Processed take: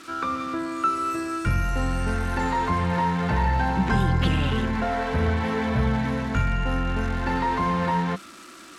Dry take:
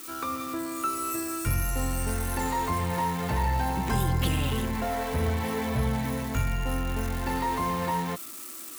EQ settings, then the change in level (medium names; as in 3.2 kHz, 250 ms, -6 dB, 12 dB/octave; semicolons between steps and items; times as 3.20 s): low-pass 4.4 kHz 12 dB/octave; peaking EQ 190 Hz +8 dB 0.21 oct; peaking EQ 1.5 kHz +7 dB 0.32 oct; +3.5 dB